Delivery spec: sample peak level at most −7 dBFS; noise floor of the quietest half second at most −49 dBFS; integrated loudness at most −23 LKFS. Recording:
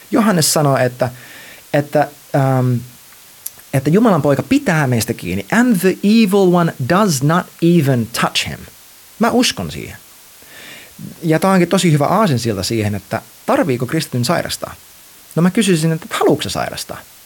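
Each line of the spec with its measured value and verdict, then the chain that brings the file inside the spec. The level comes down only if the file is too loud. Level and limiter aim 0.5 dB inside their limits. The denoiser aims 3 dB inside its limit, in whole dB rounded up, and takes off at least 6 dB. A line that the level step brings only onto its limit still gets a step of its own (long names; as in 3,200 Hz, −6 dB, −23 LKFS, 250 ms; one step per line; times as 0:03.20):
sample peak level −2.5 dBFS: out of spec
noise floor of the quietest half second −42 dBFS: out of spec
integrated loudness −15.5 LKFS: out of spec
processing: level −8 dB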